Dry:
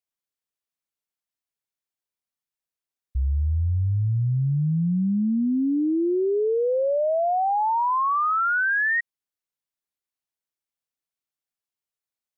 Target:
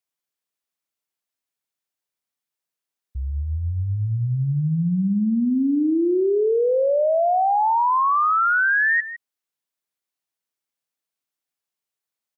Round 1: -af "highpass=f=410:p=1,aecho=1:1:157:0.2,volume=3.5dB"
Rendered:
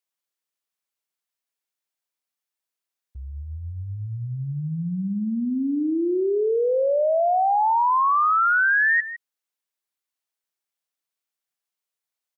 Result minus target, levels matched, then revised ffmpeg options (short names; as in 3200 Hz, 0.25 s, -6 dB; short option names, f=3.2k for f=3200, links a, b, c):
125 Hz band -6.0 dB
-af "highpass=f=140:p=1,aecho=1:1:157:0.2,volume=3.5dB"